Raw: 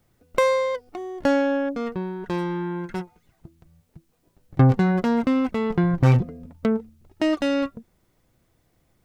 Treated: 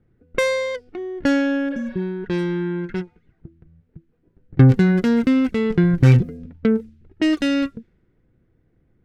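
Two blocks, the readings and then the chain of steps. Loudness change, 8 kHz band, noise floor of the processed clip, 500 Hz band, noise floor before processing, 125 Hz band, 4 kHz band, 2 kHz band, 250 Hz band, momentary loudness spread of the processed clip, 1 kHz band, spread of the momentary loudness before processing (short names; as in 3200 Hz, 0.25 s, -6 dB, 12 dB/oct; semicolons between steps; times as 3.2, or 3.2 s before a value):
+3.5 dB, n/a, -64 dBFS, +0.5 dB, -67 dBFS, +4.5 dB, +4.5 dB, +4.0 dB, +4.5 dB, 14 LU, -5.0 dB, 13 LU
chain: low-pass opened by the level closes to 1200 Hz, open at -19.5 dBFS; band shelf 830 Hz -11 dB 1.3 oct; spectral repair 1.73–1.99, 410–5400 Hz both; gain +4.5 dB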